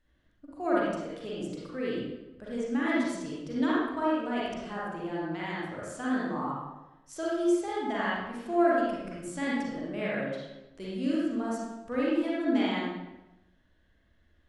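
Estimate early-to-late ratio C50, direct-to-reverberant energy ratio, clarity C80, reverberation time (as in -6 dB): -4.0 dB, -7.5 dB, 0.5 dB, 1.0 s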